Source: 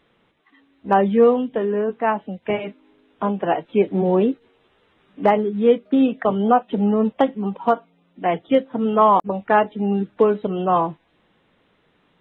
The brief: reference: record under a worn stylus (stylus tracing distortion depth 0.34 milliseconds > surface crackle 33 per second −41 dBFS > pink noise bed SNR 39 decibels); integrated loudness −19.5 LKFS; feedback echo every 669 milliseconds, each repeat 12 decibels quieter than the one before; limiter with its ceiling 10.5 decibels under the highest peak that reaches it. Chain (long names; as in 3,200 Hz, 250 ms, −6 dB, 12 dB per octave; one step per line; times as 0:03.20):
brickwall limiter −15.5 dBFS
repeating echo 669 ms, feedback 25%, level −12 dB
stylus tracing distortion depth 0.34 ms
surface crackle 33 per second −41 dBFS
pink noise bed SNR 39 dB
level +5.5 dB